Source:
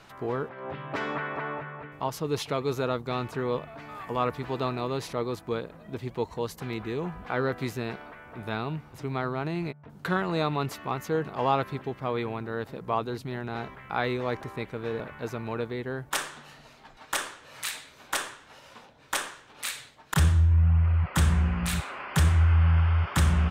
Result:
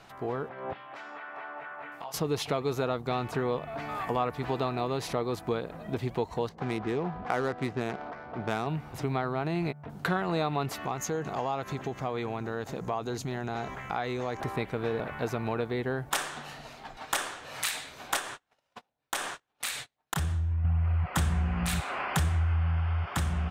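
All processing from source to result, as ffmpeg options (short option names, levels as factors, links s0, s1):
-filter_complex "[0:a]asettb=1/sr,asplit=3[s0][s1][s2];[s0]atrim=end=0.734[s3];[s1]atrim=start=0.73:end=2.14,asetpts=PTS-STARTPTS,afade=t=in:d=0.004:c=qsin,afade=t=out:st=1.406:d=0.004:c=qsin,highpass=f=1100:p=1,acompressor=threshold=0.00562:ratio=6:attack=3.2:release=140:knee=1:detection=peak,asplit=2[s4][s5];[s5]adelay=24,volume=0.708[s6];[s4][s6]amix=inputs=2:normalize=0,atrim=end_sample=62181[s7];[s2]atrim=start=2.136[s8];[s3][s7]acrossfade=d=0.004:c1=hsin:c2=qsin[s9];[s9][s8]acrossfade=d=0.004:c1=qsin:c2=hsin,asettb=1/sr,asplit=3[s10][s11][s12];[s10]atrim=end=6.494[s13];[s11]atrim=start=6.49:end=8.67,asetpts=PTS-STARTPTS,afade=t=in:d=0.004:c=qsin,afade=t=out:st=2.176:d=0.004:c=qsin,highpass=f=120:p=1,adynamicsmooth=sensitivity=7:basefreq=1000[s14];[s12]atrim=start=8.666[s15];[s13][s14]acrossfade=d=0.004:c1=hsin:c2=qsin[s16];[s16][s15]acrossfade=d=0.004:c1=qsin:c2=hsin,asettb=1/sr,asplit=3[s17][s18][s19];[s17]atrim=end=10.854[s20];[s18]atrim=start=10.85:end=14.4,asetpts=PTS-STARTPTS,afade=t=in:d=0.004:c=qsin,afade=t=out:st=3.546:d=0.004:c=qsin,equalizer=f=6600:w=3.3:g=14.5,acompressor=threshold=0.0126:ratio=2:attack=3.2:release=140:knee=1:detection=peak[s21];[s19]atrim=start=14.396[s22];[s20][s21]acrossfade=d=0.004:c1=hsin:c2=qsin[s23];[s23][s22]acrossfade=d=0.004:c1=qsin:c2=hsin,asettb=1/sr,asplit=3[s24][s25][s26];[s24]atrim=end=18.194[s27];[s25]atrim=start=18.19:end=20.65,asetpts=PTS-STARTPTS,afade=t=in:d=0.004:c=qsin,afade=t=out:st=2.456:d=0.004:c=qsin,agate=range=0.0178:threshold=0.00447:ratio=16:release=100:detection=peak,acompressor=threshold=0.0141:ratio=2:attack=3.2:release=140:knee=1:detection=peak[s28];[s26]atrim=start=20.646[s29];[s27][s28]acrossfade=d=0.004:c1=hsin:c2=qsin[s30];[s30][s29]acrossfade=d=0.004:c1=qsin:c2=hsin,dynaudnorm=f=210:g=11:m=2.24,equalizer=f=730:t=o:w=0.25:g=7,acompressor=threshold=0.0501:ratio=3,volume=0.841"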